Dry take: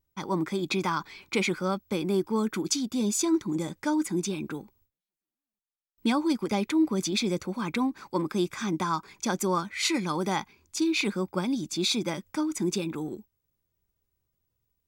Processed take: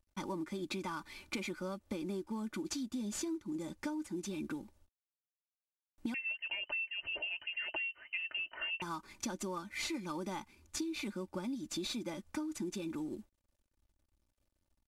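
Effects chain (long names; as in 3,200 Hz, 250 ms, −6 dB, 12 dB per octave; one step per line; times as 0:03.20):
variable-slope delta modulation 64 kbit/s
low-shelf EQ 170 Hz +9 dB
comb filter 3.4 ms, depth 55%
downward compressor 12 to 1, threshold −31 dBFS, peak gain reduction 17.5 dB
0:06.14–0:08.82: voice inversion scrambler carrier 3,000 Hz
level −5 dB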